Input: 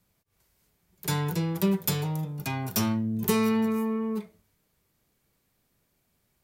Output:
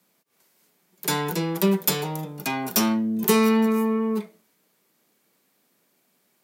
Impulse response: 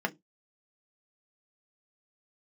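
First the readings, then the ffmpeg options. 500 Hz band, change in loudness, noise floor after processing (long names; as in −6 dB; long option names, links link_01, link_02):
+6.5 dB, +4.5 dB, −68 dBFS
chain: -af "highpass=frequency=200:width=0.5412,highpass=frequency=200:width=1.3066,volume=6.5dB"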